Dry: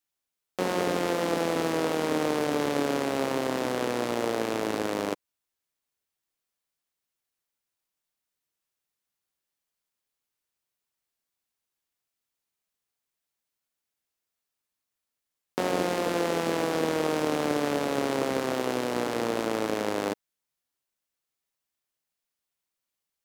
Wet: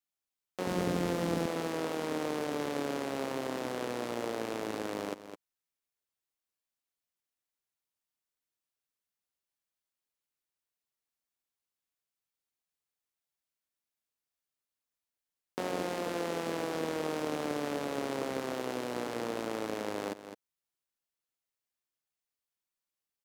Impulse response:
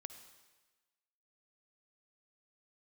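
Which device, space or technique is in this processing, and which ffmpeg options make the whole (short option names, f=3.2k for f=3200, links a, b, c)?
ducked delay: -filter_complex "[0:a]asettb=1/sr,asplit=3[a][b][c];[a]atrim=end=0.674[d];[b]atrim=start=0.67:end=1.46,asetpts=PTS-STARTPTS,afade=t=in:d=0.004:c=qsin,afade=t=out:st=0.786:d=0.004:c=qsin,bass=f=250:g=13,treble=f=4k:g=2[e];[c]atrim=start=1.456[f];[d][e]acrossfade=d=0.004:c1=hsin:c2=qsin[g];[g][f]acrossfade=d=0.004:c1=qsin:c2=hsin,asplit=3[h][i][j];[i]adelay=209,volume=-5.5dB[k];[j]apad=whole_len=1034485[l];[k][l]sidechaincompress=threshold=-36dB:ratio=4:attack=40:release=375[m];[h][m]amix=inputs=2:normalize=0,volume=-7.5dB"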